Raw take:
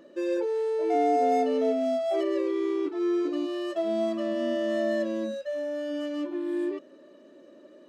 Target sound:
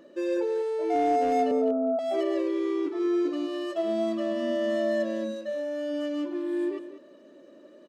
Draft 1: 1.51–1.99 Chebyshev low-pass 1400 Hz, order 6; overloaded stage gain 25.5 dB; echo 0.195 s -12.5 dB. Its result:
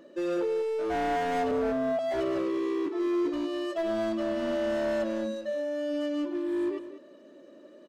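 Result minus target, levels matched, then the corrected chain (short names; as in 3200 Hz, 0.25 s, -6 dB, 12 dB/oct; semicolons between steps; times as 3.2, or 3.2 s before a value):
overloaded stage: distortion +21 dB
1.51–1.99 Chebyshev low-pass 1400 Hz, order 6; overloaded stage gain 17 dB; echo 0.195 s -12.5 dB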